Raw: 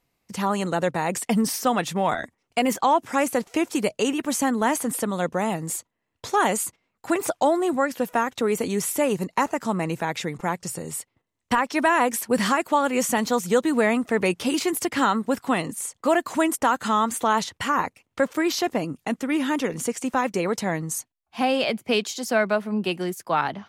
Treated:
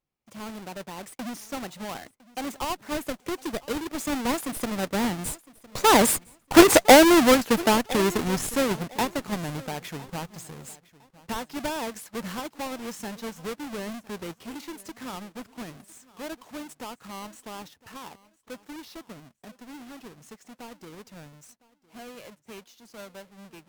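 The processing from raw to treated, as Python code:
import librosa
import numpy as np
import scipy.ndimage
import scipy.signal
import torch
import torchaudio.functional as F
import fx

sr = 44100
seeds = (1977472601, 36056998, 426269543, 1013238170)

p1 = fx.halfwave_hold(x, sr)
p2 = fx.doppler_pass(p1, sr, speed_mps=27, closest_m=11.0, pass_at_s=6.64)
p3 = fx.schmitt(p2, sr, flips_db=-31.0)
p4 = p2 + F.gain(torch.from_numpy(p3), -10.0).numpy()
p5 = fx.echo_feedback(p4, sr, ms=1008, feedback_pct=25, wet_db=-21)
y = F.gain(torch.from_numpy(p5), 5.5).numpy()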